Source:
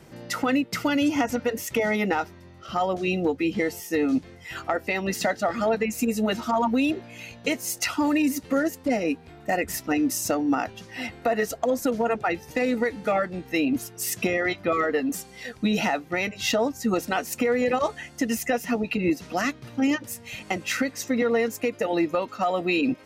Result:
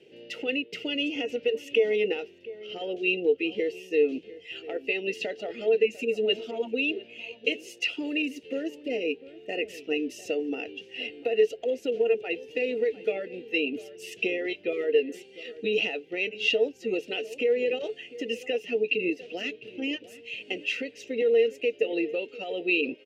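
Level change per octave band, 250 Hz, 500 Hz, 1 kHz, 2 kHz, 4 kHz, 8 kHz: −9.0, +0.5, −17.5, −2.0, +1.5, −17.5 decibels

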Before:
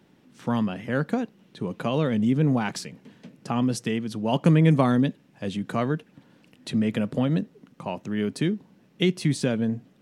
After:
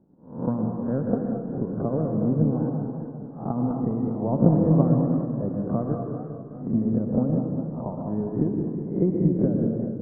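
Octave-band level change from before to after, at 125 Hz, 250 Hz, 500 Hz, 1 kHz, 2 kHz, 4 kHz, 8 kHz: +1.0 dB, +1.5 dB, +1.0 dB, −4.0 dB, below −20 dB, below −40 dB, below −40 dB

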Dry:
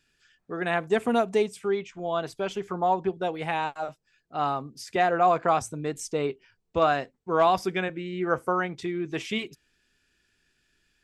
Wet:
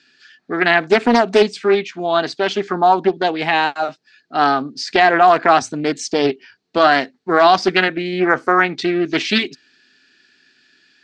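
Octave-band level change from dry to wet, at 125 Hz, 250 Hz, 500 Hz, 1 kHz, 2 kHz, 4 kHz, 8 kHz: +5.5, +11.5, +9.5, +10.5, +15.0, +16.0, +8.5 decibels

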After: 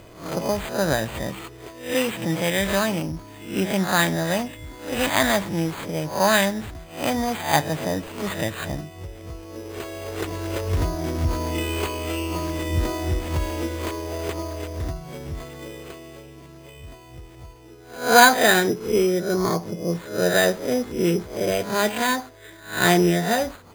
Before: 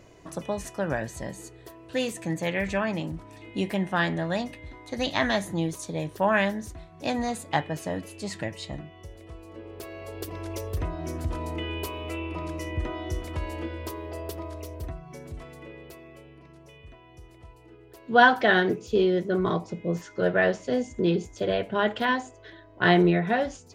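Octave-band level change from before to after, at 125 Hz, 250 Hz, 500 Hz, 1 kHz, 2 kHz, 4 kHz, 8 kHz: +4.5, +3.5, +4.0, +4.0, +4.0, +7.5, +13.5 decibels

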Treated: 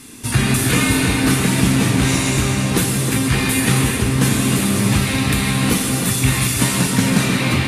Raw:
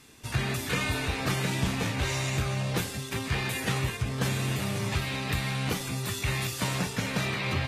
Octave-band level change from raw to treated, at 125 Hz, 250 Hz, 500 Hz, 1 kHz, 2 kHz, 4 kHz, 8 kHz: +12.0, +17.0, +10.5, +10.0, +10.5, +11.0, +17.0 decibels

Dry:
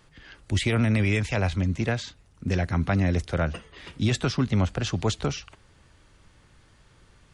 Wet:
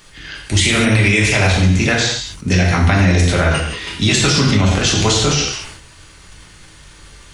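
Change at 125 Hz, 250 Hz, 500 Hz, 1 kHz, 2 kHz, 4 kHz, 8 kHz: +10.0, +10.0, +10.5, +12.5, +15.5, +18.0, +20.0 decibels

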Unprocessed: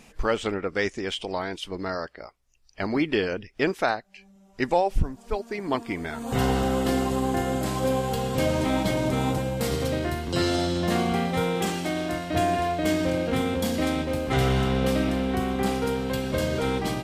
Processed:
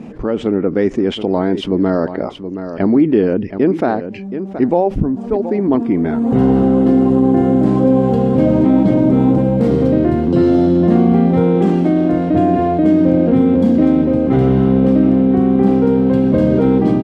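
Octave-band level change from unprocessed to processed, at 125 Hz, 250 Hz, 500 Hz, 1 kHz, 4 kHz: +11.5 dB, +16.0 dB, +11.0 dB, +5.5 dB, can't be measured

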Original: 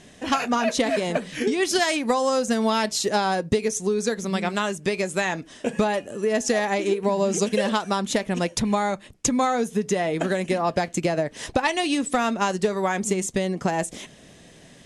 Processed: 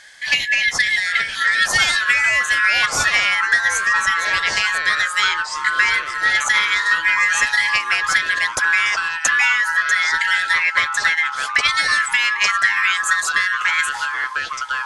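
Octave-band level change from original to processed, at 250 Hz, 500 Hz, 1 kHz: below −20 dB, −16.5 dB, +3.5 dB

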